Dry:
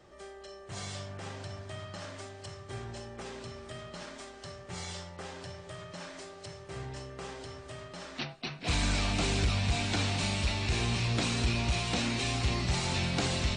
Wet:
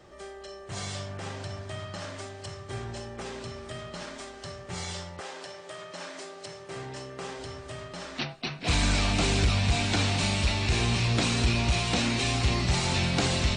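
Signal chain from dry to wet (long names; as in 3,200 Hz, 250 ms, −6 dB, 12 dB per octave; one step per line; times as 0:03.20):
0:05.19–0:07.38: high-pass filter 410 Hz → 120 Hz 12 dB per octave
level +4.5 dB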